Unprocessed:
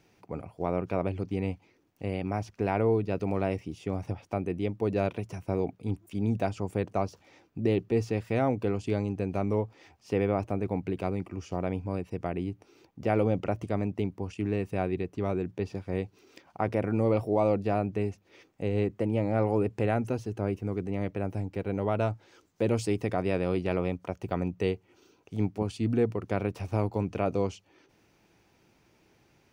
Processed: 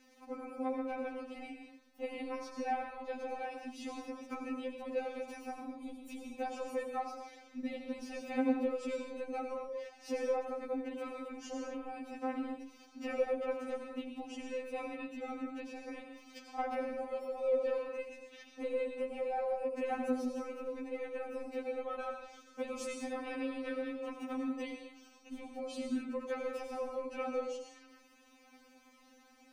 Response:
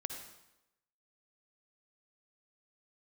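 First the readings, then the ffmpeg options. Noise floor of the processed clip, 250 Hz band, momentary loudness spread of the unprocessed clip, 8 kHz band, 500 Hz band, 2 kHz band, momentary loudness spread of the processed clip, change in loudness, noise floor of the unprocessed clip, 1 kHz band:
-63 dBFS, -9.0 dB, 9 LU, n/a, -7.5 dB, -5.0 dB, 12 LU, -9.0 dB, -66 dBFS, -5.5 dB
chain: -filter_complex "[0:a]acompressor=threshold=-37dB:ratio=2.5[a];[1:a]atrim=start_sample=2205,afade=t=out:st=0.22:d=0.01,atrim=end_sample=10143,asetrate=29106,aresample=44100[b];[a][b]afir=irnorm=-1:irlink=0,afftfilt=real='re*3.46*eq(mod(b,12),0)':imag='im*3.46*eq(mod(b,12),0)':win_size=2048:overlap=0.75,volume=4dB"

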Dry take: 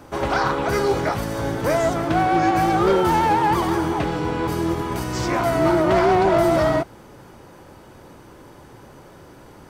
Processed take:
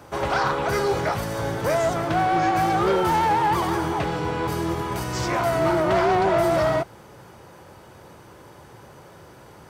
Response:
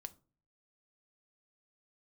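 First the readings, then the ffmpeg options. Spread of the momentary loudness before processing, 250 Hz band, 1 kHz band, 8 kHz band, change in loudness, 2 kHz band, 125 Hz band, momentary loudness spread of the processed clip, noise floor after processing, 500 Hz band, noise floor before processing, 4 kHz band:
8 LU, -5.0 dB, -1.5 dB, -1.0 dB, -2.5 dB, -1.5 dB, -2.5 dB, 7 LU, -47 dBFS, -2.5 dB, -46 dBFS, -1.0 dB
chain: -af "highpass=65,equalizer=f=270:w=2.1:g=-7,asoftclip=type=tanh:threshold=-13dB"

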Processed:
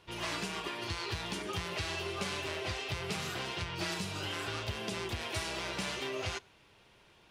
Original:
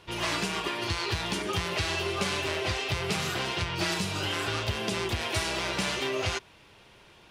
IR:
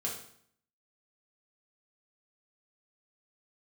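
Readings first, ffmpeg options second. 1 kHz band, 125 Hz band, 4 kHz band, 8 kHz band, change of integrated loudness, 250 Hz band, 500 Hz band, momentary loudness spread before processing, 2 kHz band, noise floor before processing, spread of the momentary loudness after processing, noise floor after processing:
-7.0 dB, -7.0 dB, -7.0 dB, -7.0 dB, -7.0 dB, -7.0 dB, -7.0 dB, 2 LU, -7.0 dB, -56 dBFS, 2 LU, -63 dBFS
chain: -filter_complex "[0:a]asplit=2[a][b];[1:a]atrim=start_sample=2205[c];[b][c]afir=irnorm=-1:irlink=0,volume=-24.5dB[d];[a][d]amix=inputs=2:normalize=0,volume=-7.5dB"

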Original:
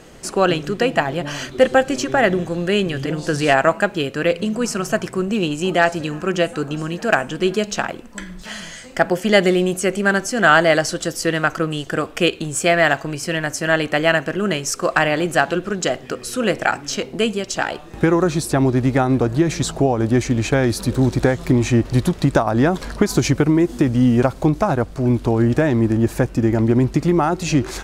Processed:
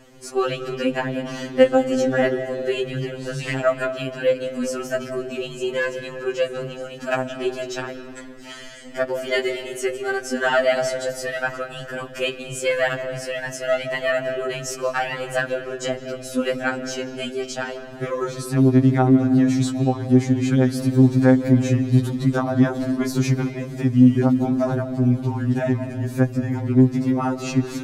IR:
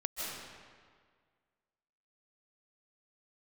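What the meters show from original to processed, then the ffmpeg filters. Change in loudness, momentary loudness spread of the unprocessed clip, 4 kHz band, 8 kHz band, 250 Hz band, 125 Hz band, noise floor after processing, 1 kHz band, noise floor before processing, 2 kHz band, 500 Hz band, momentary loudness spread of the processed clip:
-3.0 dB, 8 LU, -6.5 dB, -7.5 dB, -1.5 dB, -1.5 dB, -37 dBFS, -7.0 dB, -38 dBFS, -7.0 dB, -3.5 dB, 12 LU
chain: -filter_complex "[0:a]asplit=2[a][b];[b]equalizer=f=250:t=o:w=1:g=10,equalizer=f=1k:t=o:w=1:g=-6,equalizer=f=8k:t=o:w=1:g=-12[c];[1:a]atrim=start_sample=2205[d];[c][d]afir=irnorm=-1:irlink=0,volume=-9.5dB[e];[a][e]amix=inputs=2:normalize=0,afftfilt=real='re*2.45*eq(mod(b,6),0)':imag='im*2.45*eq(mod(b,6),0)':win_size=2048:overlap=0.75,volume=-6dB"

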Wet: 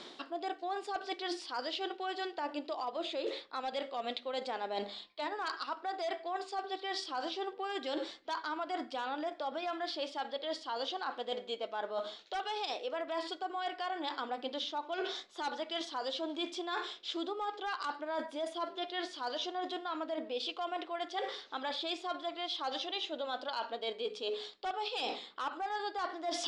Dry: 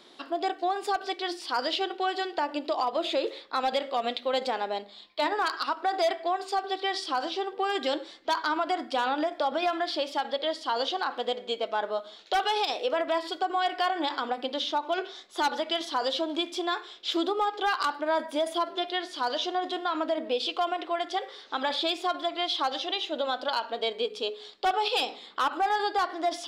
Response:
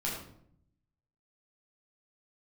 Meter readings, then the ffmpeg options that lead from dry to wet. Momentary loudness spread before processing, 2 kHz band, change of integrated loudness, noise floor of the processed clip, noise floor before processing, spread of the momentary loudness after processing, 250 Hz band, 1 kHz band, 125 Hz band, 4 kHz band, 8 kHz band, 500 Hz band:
4 LU, -9.0 dB, -9.0 dB, -54 dBFS, -49 dBFS, 3 LU, -8.0 dB, -9.5 dB, n/a, -8.0 dB, -6.5 dB, -8.5 dB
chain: -af "lowpass=f=8.5k:w=0.5412,lowpass=f=8.5k:w=1.3066,areverse,acompressor=threshold=-40dB:ratio=16,areverse,volume=6dB"

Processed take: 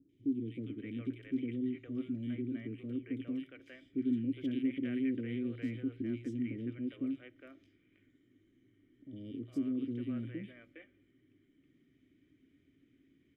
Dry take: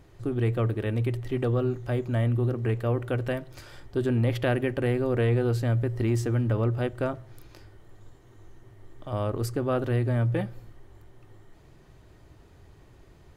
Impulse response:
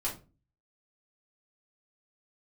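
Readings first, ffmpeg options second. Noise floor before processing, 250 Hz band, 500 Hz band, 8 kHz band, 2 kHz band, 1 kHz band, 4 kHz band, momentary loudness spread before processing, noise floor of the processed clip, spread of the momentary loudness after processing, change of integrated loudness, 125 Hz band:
-54 dBFS, -4.0 dB, -18.0 dB, under -25 dB, -15.0 dB, under -25 dB, -13.0 dB, 7 LU, -71 dBFS, 14 LU, -10.5 dB, -20.5 dB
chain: -filter_complex "[0:a]asplit=3[a][b][c];[a]bandpass=f=270:t=q:w=8,volume=0dB[d];[b]bandpass=f=2.29k:t=q:w=8,volume=-6dB[e];[c]bandpass=f=3.01k:t=q:w=8,volume=-9dB[f];[d][e][f]amix=inputs=3:normalize=0,equalizer=f=4.4k:t=o:w=0.28:g=-11.5,acrossover=split=510|2700[g][h][i];[i]adelay=90[j];[h]adelay=410[k];[g][k][j]amix=inputs=3:normalize=0,volume=2dB"

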